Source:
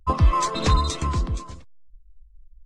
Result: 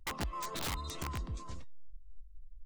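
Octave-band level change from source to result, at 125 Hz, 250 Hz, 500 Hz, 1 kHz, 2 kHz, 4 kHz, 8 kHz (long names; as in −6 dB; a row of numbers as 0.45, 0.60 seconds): −19.5, −15.5, −15.5, −17.5, −8.0, −11.5, −10.5 decibels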